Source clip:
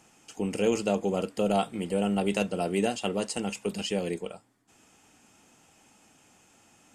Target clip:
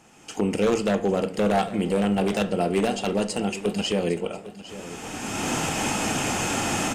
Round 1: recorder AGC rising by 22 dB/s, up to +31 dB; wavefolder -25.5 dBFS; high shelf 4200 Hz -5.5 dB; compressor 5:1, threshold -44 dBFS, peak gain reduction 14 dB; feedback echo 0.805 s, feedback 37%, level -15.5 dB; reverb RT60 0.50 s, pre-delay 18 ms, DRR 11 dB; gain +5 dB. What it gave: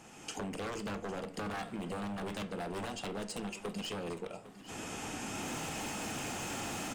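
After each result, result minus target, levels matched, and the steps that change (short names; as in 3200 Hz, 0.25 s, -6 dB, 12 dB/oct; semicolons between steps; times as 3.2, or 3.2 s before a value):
compressor: peak gain reduction +14 dB; wavefolder: distortion +12 dB
remove: compressor 5:1, threshold -44 dBFS, peak gain reduction 14 dB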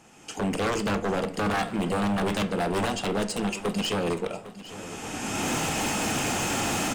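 wavefolder: distortion +12 dB
change: wavefolder -19.5 dBFS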